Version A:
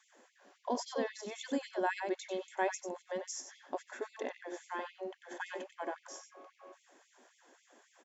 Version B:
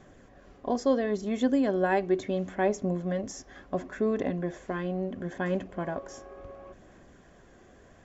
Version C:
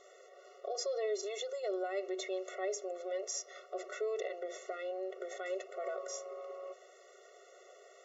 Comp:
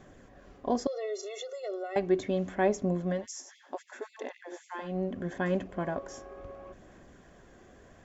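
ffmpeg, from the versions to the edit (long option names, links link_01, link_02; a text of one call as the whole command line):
ffmpeg -i take0.wav -i take1.wav -i take2.wav -filter_complex "[1:a]asplit=3[link_01][link_02][link_03];[link_01]atrim=end=0.872[link_04];[2:a]atrim=start=0.868:end=1.962[link_05];[link_02]atrim=start=1.958:end=3.27[link_06];[0:a]atrim=start=3.11:end=4.97[link_07];[link_03]atrim=start=4.81[link_08];[link_04][link_05]acrossfade=duration=0.004:curve1=hsin:curve2=hsin[link_09];[link_09][link_06]acrossfade=duration=0.004:curve1=hsin:curve2=hsin[link_10];[link_10][link_07]acrossfade=duration=0.16:curve1=tri:curve2=tri[link_11];[link_11][link_08]acrossfade=duration=0.16:curve1=tri:curve2=tri" out.wav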